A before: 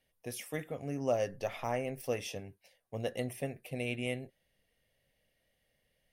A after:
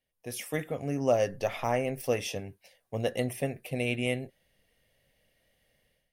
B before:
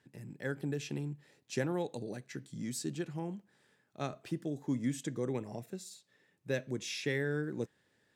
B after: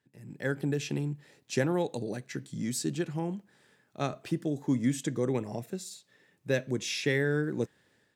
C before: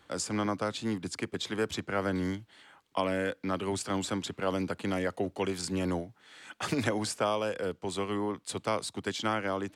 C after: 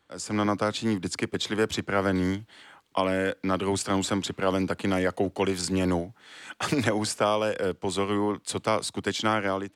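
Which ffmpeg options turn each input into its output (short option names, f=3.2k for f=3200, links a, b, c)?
-af "dynaudnorm=f=110:g=5:m=13.5dB,volume=-7.5dB"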